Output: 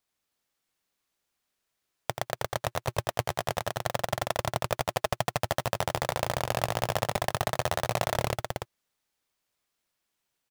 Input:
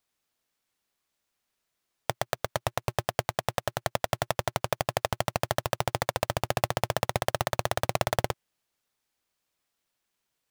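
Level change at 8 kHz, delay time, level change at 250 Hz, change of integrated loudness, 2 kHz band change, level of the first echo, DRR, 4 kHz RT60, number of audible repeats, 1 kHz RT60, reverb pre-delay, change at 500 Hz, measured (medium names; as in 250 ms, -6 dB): 0.0 dB, 84 ms, 0.0 dB, -0.5 dB, 0.0 dB, -8.0 dB, no reverb, no reverb, 2, no reverb, no reverb, -0.5 dB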